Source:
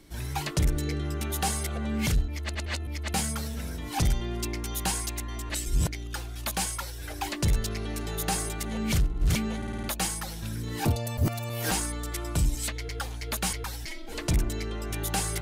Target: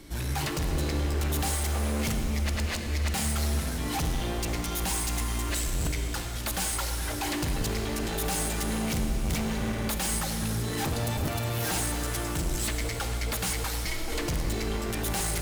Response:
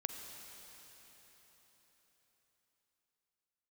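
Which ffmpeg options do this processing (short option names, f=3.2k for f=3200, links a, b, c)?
-filter_complex "[0:a]volume=34dB,asoftclip=hard,volume=-34dB[a];[1:a]atrim=start_sample=2205,asetrate=48510,aresample=44100[b];[a][b]afir=irnorm=-1:irlink=0,volume=8.5dB"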